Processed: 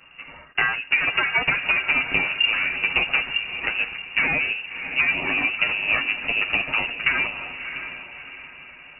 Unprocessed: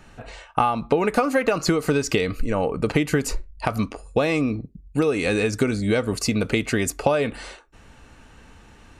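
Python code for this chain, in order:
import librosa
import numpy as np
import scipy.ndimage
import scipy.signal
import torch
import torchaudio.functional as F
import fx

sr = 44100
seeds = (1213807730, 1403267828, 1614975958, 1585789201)

y = fx.lower_of_two(x, sr, delay_ms=9.1)
y = fx.peak_eq(y, sr, hz=250.0, db=-8.5, octaves=0.24)
y = fx.echo_diffused(y, sr, ms=644, feedback_pct=42, wet_db=-9.5)
y = fx.freq_invert(y, sr, carrier_hz=2800)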